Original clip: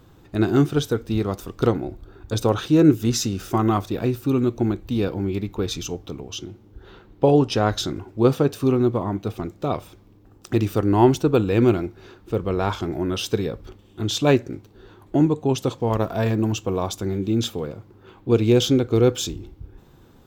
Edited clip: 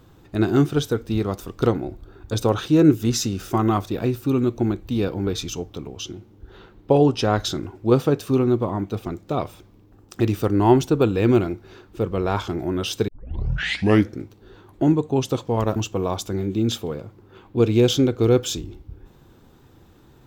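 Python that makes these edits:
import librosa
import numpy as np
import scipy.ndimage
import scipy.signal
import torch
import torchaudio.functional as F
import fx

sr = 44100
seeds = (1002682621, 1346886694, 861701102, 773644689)

y = fx.edit(x, sr, fx.cut(start_s=5.27, length_s=0.33),
    fx.tape_start(start_s=13.41, length_s=1.13),
    fx.cut(start_s=16.09, length_s=0.39), tone=tone)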